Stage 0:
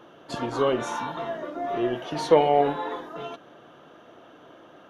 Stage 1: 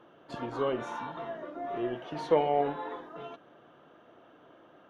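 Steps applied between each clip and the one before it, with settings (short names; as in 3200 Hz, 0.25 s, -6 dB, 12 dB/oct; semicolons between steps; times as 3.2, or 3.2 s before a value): tone controls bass 0 dB, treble -10 dB; gain -7 dB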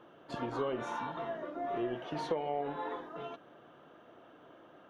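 compressor 10:1, threshold -30 dBFS, peak gain reduction 12 dB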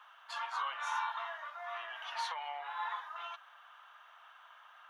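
steep high-pass 930 Hz 36 dB/oct; gain +6 dB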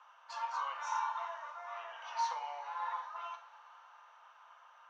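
speaker cabinet 330–7100 Hz, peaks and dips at 500 Hz +10 dB, 930 Hz +6 dB, 1800 Hz -4 dB, 3400 Hz -7 dB, 5800 Hz +8 dB; two-slope reverb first 0.43 s, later 4.7 s, from -19 dB, DRR 5 dB; gain -4.5 dB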